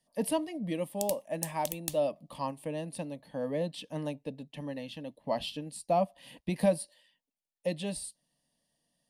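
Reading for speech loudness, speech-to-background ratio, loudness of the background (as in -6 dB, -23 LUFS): -34.5 LUFS, 4.5 dB, -39.0 LUFS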